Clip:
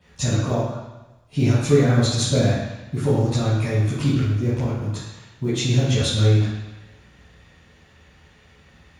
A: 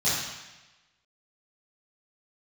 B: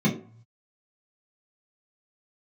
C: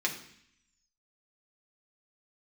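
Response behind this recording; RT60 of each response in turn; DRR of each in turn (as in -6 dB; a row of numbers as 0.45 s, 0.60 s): A; 1.1 s, 0.45 s, 0.65 s; -12.5 dB, -6.0 dB, -1.5 dB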